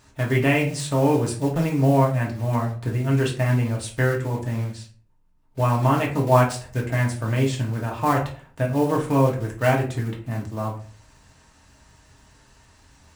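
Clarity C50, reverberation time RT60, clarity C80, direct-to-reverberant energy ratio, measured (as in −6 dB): 9.0 dB, 0.45 s, 14.5 dB, −2.0 dB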